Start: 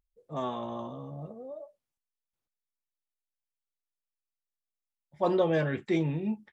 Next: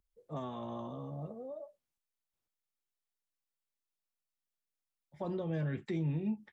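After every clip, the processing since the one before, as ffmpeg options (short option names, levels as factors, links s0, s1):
-filter_complex "[0:a]acrossover=split=220[s0][s1];[s1]acompressor=threshold=0.0112:ratio=6[s2];[s0][s2]amix=inputs=2:normalize=0,volume=0.891"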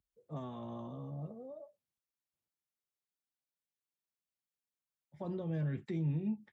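-af "highpass=96,lowshelf=f=190:g=10.5,volume=0.531"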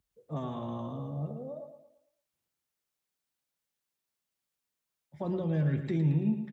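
-af "aecho=1:1:112|224|336|448|560:0.355|0.145|0.0596|0.0245|0.01,volume=2.11"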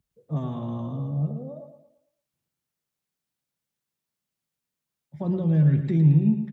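-af "equalizer=f=150:t=o:w=1.7:g=10"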